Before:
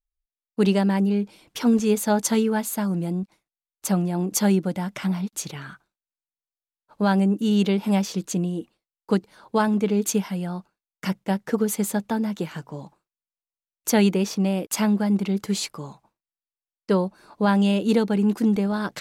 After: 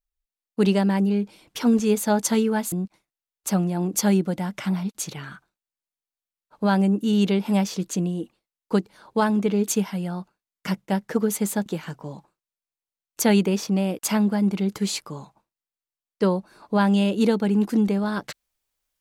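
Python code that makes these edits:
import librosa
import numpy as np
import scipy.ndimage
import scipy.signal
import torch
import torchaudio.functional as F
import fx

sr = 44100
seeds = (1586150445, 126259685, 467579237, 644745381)

y = fx.edit(x, sr, fx.cut(start_s=2.72, length_s=0.38),
    fx.cut(start_s=12.04, length_s=0.3), tone=tone)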